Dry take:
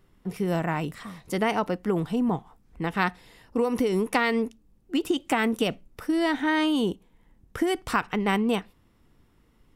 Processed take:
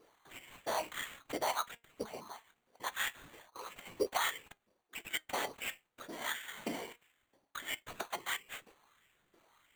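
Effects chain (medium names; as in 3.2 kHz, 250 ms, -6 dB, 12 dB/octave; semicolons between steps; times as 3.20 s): reverse; compression 6:1, threshold -33 dBFS, peak gain reduction 15.5 dB; reverse; LFO high-pass saw up 1.5 Hz 420–6700 Hz; whisper effect; sample-rate reducer 5.2 kHz, jitter 0%; flange 0.23 Hz, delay 2.2 ms, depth 2.5 ms, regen +85%; trim +4.5 dB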